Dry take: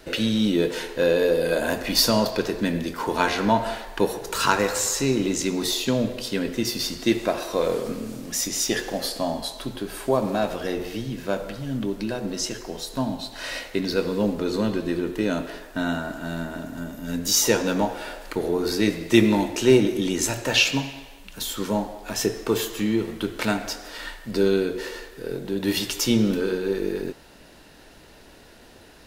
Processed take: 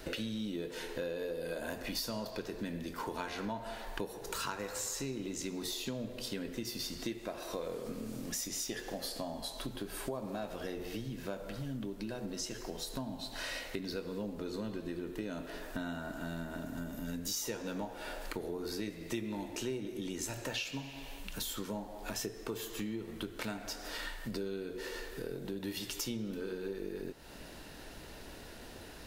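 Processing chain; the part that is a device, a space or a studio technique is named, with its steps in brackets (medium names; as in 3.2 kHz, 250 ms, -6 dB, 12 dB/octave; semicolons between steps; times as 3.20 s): ASMR close-microphone chain (bass shelf 130 Hz +3.5 dB; compression 5:1, threshold -37 dBFS, peak gain reduction 24 dB; treble shelf 12 kHz +4.5 dB); trim -1 dB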